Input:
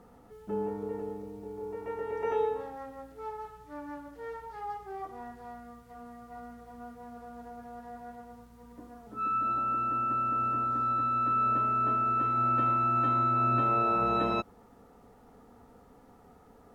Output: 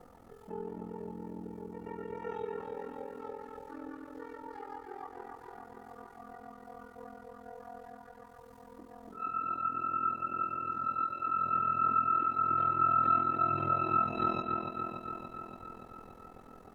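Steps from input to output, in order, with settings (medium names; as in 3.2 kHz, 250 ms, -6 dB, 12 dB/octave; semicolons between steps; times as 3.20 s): chorus voices 6, 0.32 Hz, delay 11 ms, depth 3.5 ms; in parallel at 0 dB: upward compressor, threshold -34 dBFS; on the sum: hum notches 60/120/180/240 Hz; ring modulator 21 Hz; on a send: feedback echo behind a low-pass 286 ms, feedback 67%, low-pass 3.6 kHz, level -4 dB; on the sum: trim -8 dB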